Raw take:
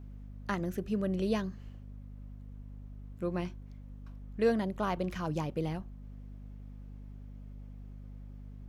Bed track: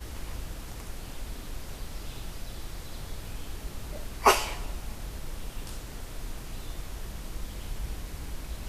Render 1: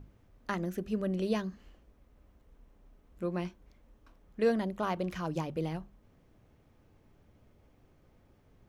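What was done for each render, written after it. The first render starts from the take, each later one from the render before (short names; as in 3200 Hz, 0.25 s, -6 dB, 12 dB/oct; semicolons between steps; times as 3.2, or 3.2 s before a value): notches 50/100/150/200/250 Hz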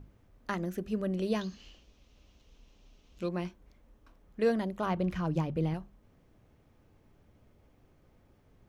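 1.41–3.29 band shelf 4100 Hz +15 dB; 4.86–5.74 tone controls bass +7 dB, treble -6 dB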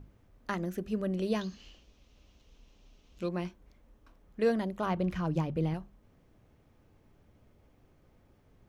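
nothing audible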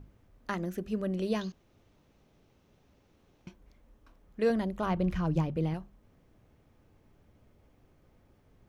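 1.52–3.47 room tone; 4.5–5.49 low shelf 87 Hz +11 dB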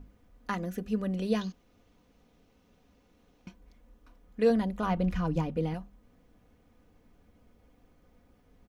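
comb 4.1 ms, depth 54%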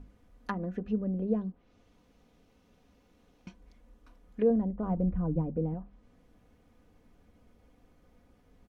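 treble ducked by the level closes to 570 Hz, closed at -28.5 dBFS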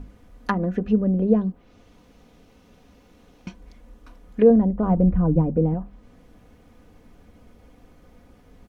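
gain +11 dB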